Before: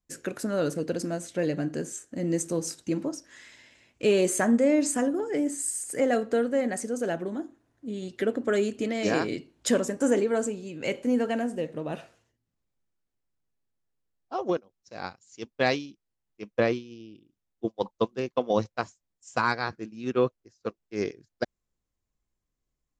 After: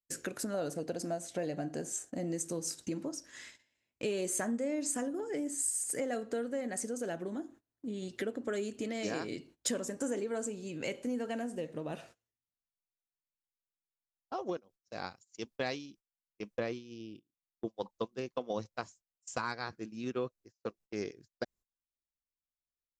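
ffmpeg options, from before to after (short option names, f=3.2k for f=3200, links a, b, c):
-filter_complex "[0:a]asettb=1/sr,asplit=3[a][b][c];[a]atrim=end=0.544[d];[b]atrim=start=0.54:end=2.33,asetpts=PTS-STARTPTS,afade=t=in:d=0.004:c=qsin,afade=t=out:st=1.786:d=0.004:c=qsin,equalizer=f=720:w=2.9:g=11[e];[c]atrim=start=2.326[f];[d][e]acrossfade=d=0.004:c1=hsin:c2=qsin[g];[g][f]acrossfade=d=0.004:c1=qsin:c2=hsin,agate=range=-23dB:threshold=-50dB:ratio=16:detection=peak,acompressor=threshold=-38dB:ratio=2.5,adynamicequalizer=threshold=0.00178:dfrequency=4000:dqfactor=0.7:tfrequency=4000:tqfactor=0.7:attack=5:release=100:ratio=0.375:range=2.5:mode=boostabove:tftype=highshelf"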